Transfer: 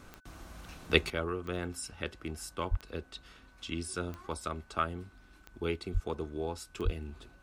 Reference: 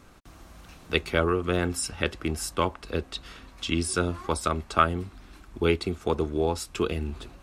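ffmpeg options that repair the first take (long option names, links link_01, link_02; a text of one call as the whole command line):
ffmpeg -i in.wav -filter_complex "[0:a]adeclick=threshold=4,bandreject=frequency=1500:width=30,asplit=3[link_01][link_02][link_03];[link_01]afade=type=out:start_time=2.7:duration=0.02[link_04];[link_02]highpass=frequency=140:width=0.5412,highpass=frequency=140:width=1.3066,afade=type=in:start_time=2.7:duration=0.02,afade=type=out:start_time=2.82:duration=0.02[link_05];[link_03]afade=type=in:start_time=2.82:duration=0.02[link_06];[link_04][link_05][link_06]amix=inputs=3:normalize=0,asplit=3[link_07][link_08][link_09];[link_07]afade=type=out:start_time=5.93:duration=0.02[link_10];[link_08]highpass=frequency=140:width=0.5412,highpass=frequency=140:width=1.3066,afade=type=in:start_time=5.93:duration=0.02,afade=type=out:start_time=6.05:duration=0.02[link_11];[link_09]afade=type=in:start_time=6.05:duration=0.02[link_12];[link_10][link_11][link_12]amix=inputs=3:normalize=0,asplit=3[link_13][link_14][link_15];[link_13]afade=type=out:start_time=6.84:duration=0.02[link_16];[link_14]highpass=frequency=140:width=0.5412,highpass=frequency=140:width=1.3066,afade=type=in:start_time=6.84:duration=0.02,afade=type=out:start_time=6.96:duration=0.02[link_17];[link_15]afade=type=in:start_time=6.96:duration=0.02[link_18];[link_16][link_17][link_18]amix=inputs=3:normalize=0,asetnsamples=nb_out_samples=441:pad=0,asendcmd='1.1 volume volume 10.5dB',volume=0dB" out.wav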